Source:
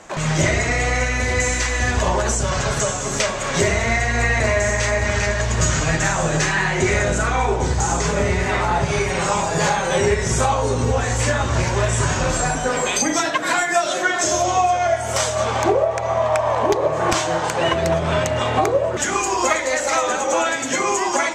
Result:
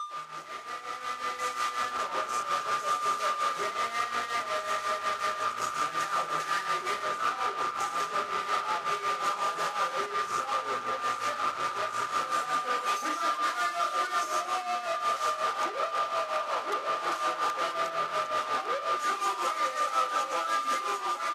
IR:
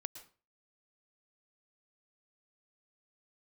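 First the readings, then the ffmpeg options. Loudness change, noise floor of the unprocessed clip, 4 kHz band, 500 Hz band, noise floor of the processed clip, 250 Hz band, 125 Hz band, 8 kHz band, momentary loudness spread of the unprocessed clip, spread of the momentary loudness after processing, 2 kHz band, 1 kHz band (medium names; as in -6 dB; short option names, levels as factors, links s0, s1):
-10.5 dB, -24 dBFS, -10.0 dB, -16.5 dB, -39 dBFS, -22.0 dB, -35.5 dB, -19.0 dB, 2 LU, 3 LU, -13.0 dB, -6.0 dB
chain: -af "aeval=exprs='val(0)+0.0891*sin(2*PI*1200*n/s)':c=same,aeval=exprs='0.596*(cos(1*acos(clip(val(0)/0.596,-1,1)))-cos(1*PI/2))+0.0266*(cos(6*acos(clip(val(0)/0.596,-1,1)))-cos(6*PI/2))':c=same,alimiter=limit=0.178:level=0:latency=1:release=238,aecho=1:1:236|472|708|944:0.0631|0.0347|0.0191|0.0105,aresample=16000,aresample=44100,aemphasis=mode=reproduction:type=50kf,asoftclip=type=hard:threshold=0.0251,tremolo=f=5.5:d=0.69,equalizer=f=1300:t=o:w=0.22:g=13,dynaudnorm=f=180:g=13:m=3.16,highpass=390,volume=0.473" -ar 48000 -c:a libvorbis -b:a 32k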